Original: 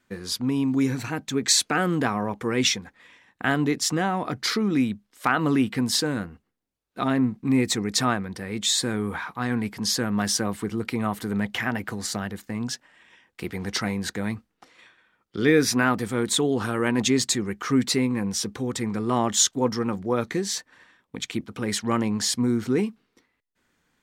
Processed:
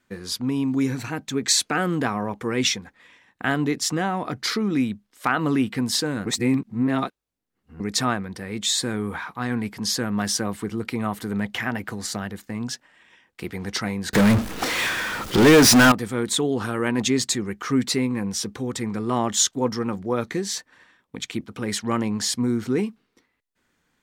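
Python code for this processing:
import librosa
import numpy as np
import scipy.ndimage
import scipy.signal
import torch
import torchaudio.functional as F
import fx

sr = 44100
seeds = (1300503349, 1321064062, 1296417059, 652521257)

y = fx.power_curve(x, sr, exponent=0.35, at=(14.13, 15.92))
y = fx.edit(y, sr, fx.reverse_span(start_s=6.26, length_s=1.54), tone=tone)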